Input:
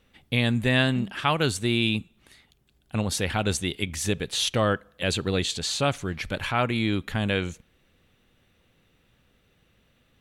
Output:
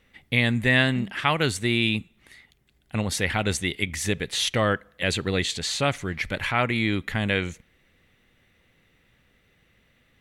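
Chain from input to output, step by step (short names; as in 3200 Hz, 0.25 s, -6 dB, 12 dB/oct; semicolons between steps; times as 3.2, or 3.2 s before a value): bell 2000 Hz +9.5 dB 0.38 oct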